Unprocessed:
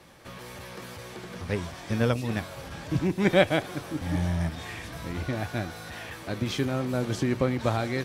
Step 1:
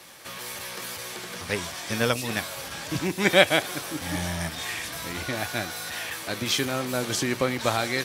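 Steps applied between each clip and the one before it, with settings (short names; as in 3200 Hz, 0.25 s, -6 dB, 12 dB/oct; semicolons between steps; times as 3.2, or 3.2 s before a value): tilt +3 dB/oct; gain +4 dB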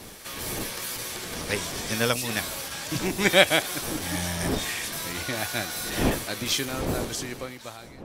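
ending faded out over 1.99 s; wind noise 430 Hz -35 dBFS; high shelf 4100 Hz +6 dB; gain -1 dB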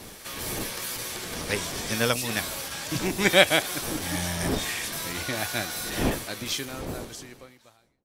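ending faded out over 2.39 s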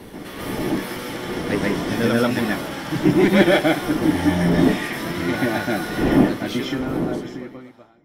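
soft clip -17 dBFS, distortion -9 dB; reverb RT60 0.15 s, pre-delay 0.132 s, DRR -3.5 dB; gain -6 dB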